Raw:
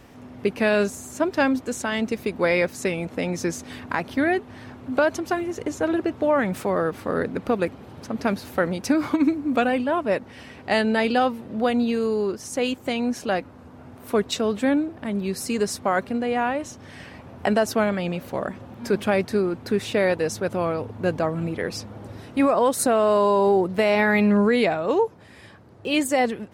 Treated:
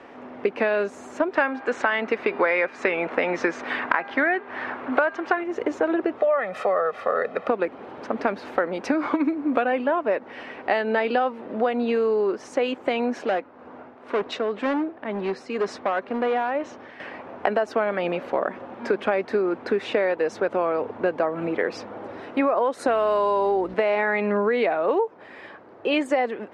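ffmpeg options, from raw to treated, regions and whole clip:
-filter_complex "[0:a]asettb=1/sr,asplit=3[a][b][c];[a]atrim=end=1.354[d];[b]atrim=start=1.35:end=5.44,asetpts=PTS-STARTPTS,afade=t=in:d=0.004:c=qsin,afade=t=out:st=4.086:d=0.004:c=qsin,bandreject=f=401:t=h:w=4,bandreject=f=802:t=h:w=4,bandreject=f=1.203k:t=h:w=4,bandreject=f=1.604k:t=h:w=4,bandreject=f=2.005k:t=h:w=4,bandreject=f=2.406k:t=h:w=4,bandreject=f=2.807k:t=h:w=4,bandreject=f=3.208k:t=h:w=4,bandreject=f=3.609k:t=h:w=4,bandreject=f=4.01k:t=h:w=4,bandreject=f=4.411k:t=h:w=4,bandreject=f=4.812k:t=h:w=4,acrossover=split=8000[e][f];[f]acompressor=threshold=-55dB:ratio=4:attack=1:release=60[g];[e][g]amix=inputs=2:normalize=0,equalizer=f=1.6k:t=o:w=2.4:g=9.5[h];[c]atrim=start=5.436[i];[d][h]acrossfade=d=0.004:c1=hsin:c2=qsin[j];[j][i]acrossfade=d=0.004:c1=qsin:c2=hsin,asettb=1/sr,asplit=3[k][l][m];[k]atrim=end=6.184[n];[l]atrim=start=6.18:end=7.48,asetpts=PTS-STARTPTS,afade=t=in:d=0.004:c=qsin,afade=t=out:st=1.296:d=0.004:c=qsin,lowshelf=f=340:g=-8.5,aecho=1:1:1.6:0.78,atrim=end_sample=57330[o];[m]atrim=start=7.476[p];[n][o]acrossfade=d=0.004:c1=hsin:c2=qsin[q];[q][p]acrossfade=d=0.004:c1=qsin:c2=hsin,asettb=1/sr,asplit=3[r][s][t];[r]atrim=end=13.234[u];[s]atrim=start=13.23:end=17,asetpts=PTS-STARTPTS,afade=t=in:d=0.004:c=qsin,afade=t=out:st=3.766:d=0.004:c=qsin,lowpass=6.7k,tremolo=f=2:d=0.57,asoftclip=type=hard:threshold=-24dB[v];[t]atrim=start=16.996[w];[u][v]acrossfade=d=0.004:c1=hsin:c2=qsin[x];[x][w]acrossfade=d=0.004:c1=qsin:c2=hsin,asettb=1/sr,asplit=3[y][z][aa];[y]atrim=end=22.874[ab];[z]atrim=start=22.87:end=23.74,asetpts=PTS-STARTPTS,afade=t=in:d=0.004:c=qsin,afade=t=out:st=0.866:d=0.004:c=qsin,highshelf=f=2.2k:g=10.5,aeval=exprs='val(0)+0.0398*(sin(2*PI*60*n/s)+sin(2*PI*2*60*n/s)/2+sin(2*PI*3*60*n/s)/3+sin(2*PI*4*60*n/s)/4+sin(2*PI*5*60*n/s)/5)':c=same[ac];[aa]atrim=start=23.736[ad];[ab][ac]acrossfade=d=0.004:c1=hsin:c2=qsin[ae];[ae][ad]acrossfade=d=0.004:c1=qsin:c2=hsin,lowpass=5.8k,acrossover=split=290 2600:gain=0.0631 1 0.178[af][ag][ah];[af][ag][ah]amix=inputs=3:normalize=0,acompressor=threshold=-27dB:ratio=6,volume=8dB"

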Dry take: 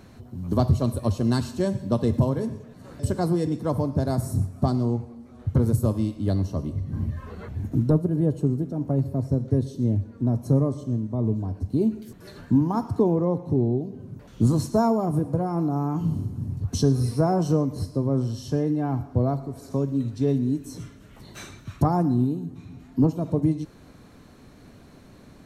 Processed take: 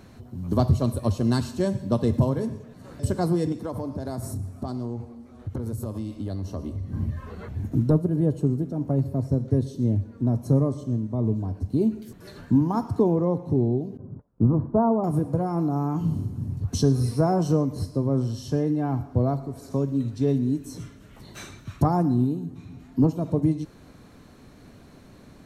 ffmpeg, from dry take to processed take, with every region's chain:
-filter_complex "[0:a]asettb=1/sr,asplit=3[a][b][c];[a]atrim=end=3.524[d];[b]atrim=start=3.52:end=6.94,asetpts=PTS-STARTPTS,afade=t=in:d=0.004:c=qsin,afade=t=out:st=3.416:d=0.004:c=qsin,equalizer=f=150:t=o:w=0.24:g=-13,acompressor=threshold=-26dB:ratio=10:attack=3.2:release=140:knee=1:detection=peak[e];[c]atrim=start=6.936[f];[d][e]acrossfade=d=0.004:c1=hsin:c2=qsin[g];[g][f]acrossfade=d=0.004:c1=qsin:c2=hsin,asettb=1/sr,asplit=3[h][i][j];[h]atrim=end=13.974[k];[i]atrim=start=13.97:end=15.04,asetpts=PTS-STARTPTS,afade=t=in:d=0.004:c=qsin,afade=t=out:st=1.066:d=0.004:c=qsin,lowpass=f=1.2k:w=0.5412,lowpass=f=1.2k:w=1.3066,agate=range=-23dB:threshold=-43dB:ratio=16:release=100:detection=peak[l];[j]atrim=start=15.036[m];[k][l]acrossfade=d=0.004:c1=hsin:c2=qsin[n];[n][m]acrossfade=d=0.004:c1=qsin:c2=hsin"

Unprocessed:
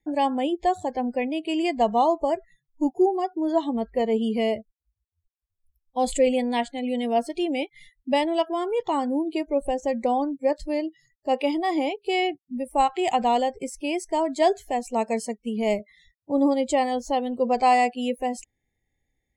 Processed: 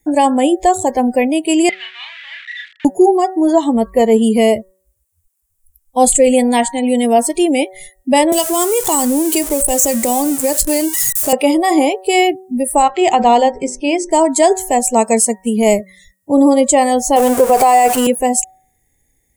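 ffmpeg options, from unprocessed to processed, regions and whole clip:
-filter_complex "[0:a]asettb=1/sr,asplit=3[a][b][c];[a]atrim=end=1.694[d];[b]atrim=start=1.69:end=2.85,asetpts=PTS-STARTPTS,afade=t=in:d=0.004:c=qsin,afade=t=out:st=1.156:d=0.004:c=qsin,aeval=exprs='val(0)+0.5*0.0299*sgn(val(0))':c=same,asuperpass=centerf=2500:order=8:qfactor=1.2,asplit=2[e][f];[f]adelay=34,volume=-3dB[g];[e][g]amix=inputs=2:normalize=0,atrim=end_sample=51156[h];[c]atrim=start=2.846[i];[d][h]acrossfade=d=0.004:c1=hsin:c2=qsin[j];[j][i]acrossfade=d=0.004:c1=qsin:c2=hsin,asettb=1/sr,asplit=3[k][l][m];[k]atrim=end=8.324[n];[l]atrim=start=8.32:end=11.33,asetpts=PTS-STARTPTS,afade=t=in:d=0.004:c=qsin,afade=t=out:st=3.006:d=0.004:c=qsin,aeval=exprs='val(0)+0.5*0.0119*sgn(val(0))':c=same,highshelf=f=3.1k:g=9.5,acrossover=split=190|3000[o][p][q];[p]acompressor=threshold=-25dB:ratio=6:attack=3.2:release=140:knee=2.83:detection=peak[r];[o][r][q]amix=inputs=3:normalize=0[s];[m]atrim=start=11.326[t];[n][s]acrossfade=d=0.004:c1=hsin:c2=qsin[u];[u][t]acrossfade=d=0.004:c1=qsin:c2=hsin,asettb=1/sr,asplit=3[v][w][x];[v]atrim=end=12.824[y];[w]atrim=start=12.82:end=14.11,asetpts=PTS-STARTPTS,afade=t=in:d=0.004:c=qsin,afade=t=out:st=1.286:d=0.004:c=qsin,lowpass=f=5.6k:w=0.5412,lowpass=f=5.6k:w=1.3066,bandreject=f=50:t=h:w=6,bandreject=f=100:t=h:w=6,bandreject=f=150:t=h:w=6,bandreject=f=200:t=h:w=6,bandreject=f=250:t=h:w=6,bandreject=f=300:t=h:w=6,bandreject=f=350:t=h:w=6,bandreject=f=400:t=h:w=6,bandreject=f=450:t=h:w=6,bandreject=f=500:t=h:w=6[z];[x]atrim=start=14.106[aa];[y][z]acrossfade=d=0.004:c1=hsin:c2=qsin[ab];[ab][aa]acrossfade=d=0.004:c1=qsin:c2=hsin,asettb=1/sr,asplit=3[ac][ad][ae];[ac]atrim=end=17.164[af];[ad]atrim=start=17.16:end=18.07,asetpts=PTS-STARTPTS,afade=t=in:d=0.004:c=qsin,afade=t=out:st=0.906:d=0.004:c=qsin,aeval=exprs='val(0)+0.5*0.0282*sgn(val(0))':c=same,equalizer=f=760:w=0.48:g=7,bandreject=f=230:w=5.4[ag];[ae]atrim=start=18.066[ah];[af][ag]acrossfade=d=0.004:c1=hsin:c2=qsin[ai];[ai][ah]acrossfade=d=0.004:c1=qsin:c2=hsin,highshelf=f=6.1k:t=q:w=1.5:g=13.5,bandreject=f=188.3:t=h:w=4,bandreject=f=376.6:t=h:w=4,bandreject=f=564.9:t=h:w=4,bandreject=f=753.2:t=h:w=4,bandreject=f=941.5:t=h:w=4,bandreject=f=1.1298k:t=h:w=4,bandreject=f=1.3181k:t=h:w=4,bandreject=f=1.5064k:t=h:w=4,bandreject=f=1.6947k:t=h:w=4,bandreject=f=1.883k:t=h:w=4,alimiter=level_in=13.5dB:limit=-1dB:release=50:level=0:latency=1,volume=-1dB"

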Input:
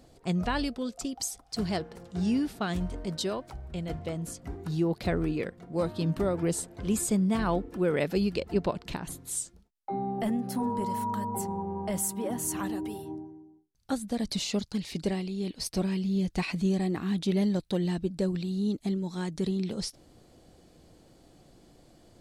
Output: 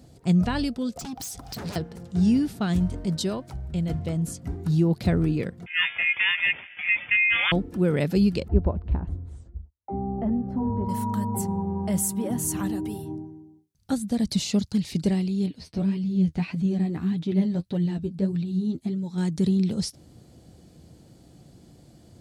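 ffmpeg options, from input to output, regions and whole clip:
-filter_complex "[0:a]asettb=1/sr,asplit=3[a][b][c];[a]atrim=end=0.964[d];[b]atrim=start=0.96:end=1.76,asetpts=PTS-STARTPTS,afade=t=in:d=0.004:c=qsin,afade=t=out:st=0.796:d=0.004:c=qsin,equalizer=f=9.3k:t=o:w=0.88:g=-5.5,aeval=exprs='0.1*sin(PI/2*5.01*val(0)/0.1)':c=same,acompressor=threshold=-37dB:ratio=12:attack=3.2:release=140:knee=1:detection=peak[e];[c]atrim=start=1.756[f];[d][e]acrossfade=d=0.004:c1=hsin:c2=qsin[g];[g][f]acrossfade=d=0.004:c1=qsin:c2=hsin,asettb=1/sr,asplit=3[h][i][j];[h]atrim=end=5.664[k];[i]atrim=start=5.66:end=7.52,asetpts=PTS-STARTPTS,afade=t=in:d=0.004:c=qsin,afade=t=out:st=1.856:d=0.004:c=qsin,aeval=exprs='val(0)*sin(2*PI*1300*n/s)':c=same,acontrast=65,lowpass=f=3.1k:t=q:w=0.5098,lowpass=f=3.1k:t=q:w=0.6013,lowpass=f=3.1k:t=q:w=0.9,lowpass=f=3.1k:t=q:w=2.563,afreqshift=-3600[l];[j]atrim=start=7.516[m];[k][l]acrossfade=d=0.004:c1=hsin:c2=qsin[n];[n][m]acrossfade=d=0.004:c1=qsin:c2=hsin,asettb=1/sr,asplit=3[o][p][q];[o]atrim=end=8.484[r];[p]atrim=start=8.48:end=10.89,asetpts=PTS-STARTPTS,afade=t=in:d=0.004:c=qsin,afade=t=out:st=2.406:d=0.004:c=qsin,lowpass=1k,lowshelf=f=100:t=q:w=3:g=11.5[s];[q]atrim=start=10.886[t];[r][s]acrossfade=d=0.004:c1=hsin:c2=qsin[u];[u][t]acrossfade=d=0.004:c1=qsin:c2=hsin,asettb=1/sr,asplit=3[v][w][x];[v]atrim=end=15.464[y];[w]atrim=start=15.46:end=19.18,asetpts=PTS-STARTPTS,afade=t=in:d=0.004:c=qsin,afade=t=out:st=3.716:d=0.004:c=qsin,acrossover=split=3800[z][aa];[aa]acompressor=threshold=-59dB:ratio=4:attack=1:release=60[ab];[z][ab]amix=inputs=2:normalize=0,flanger=delay=6.5:depth=6.6:regen=27:speed=1.7:shape=sinusoidal[ac];[x]atrim=start=19.176[ad];[y][ac]acrossfade=d=0.004:c1=hsin:c2=qsin[ae];[ae][ad]acrossfade=d=0.004:c1=qsin:c2=hsin,highpass=77,bass=f=250:g=12,treble=f=4k:g=4,bandreject=f=1.1k:w=24"

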